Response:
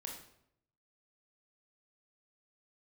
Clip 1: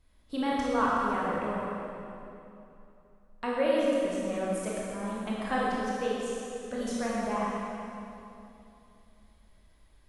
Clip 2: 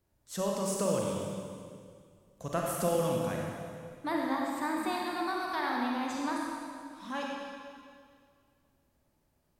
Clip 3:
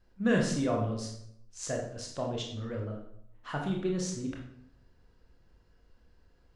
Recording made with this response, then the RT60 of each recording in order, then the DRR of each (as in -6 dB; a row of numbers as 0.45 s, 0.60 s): 3; 2.8 s, 2.1 s, 0.75 s; -6.5 dB, -2.0 dB, -0.5 dB